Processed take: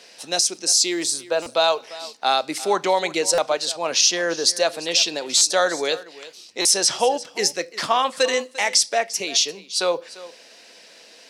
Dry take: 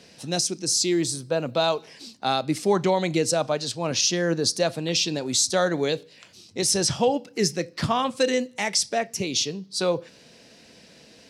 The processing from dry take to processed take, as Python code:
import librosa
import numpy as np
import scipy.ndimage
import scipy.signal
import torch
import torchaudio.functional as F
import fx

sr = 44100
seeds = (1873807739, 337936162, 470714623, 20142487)

y = scipy.signal.sosfilt(scipy.signal.butter(2, 550.0, 'highpass', fs=sr, output='sos'), x)
y = y + 10.0 ** (-18.0 / 20.0) * np.pad(y, (int(347 * sr / 1000.0), 0))[:len(y)]
y = fx.buffer_glitch(y, sr, at_s=(1.42, 3.34, 5.37, 6.61), block=256, repeats=6)
y = y * 10.0 ** (5.5 / 20.0)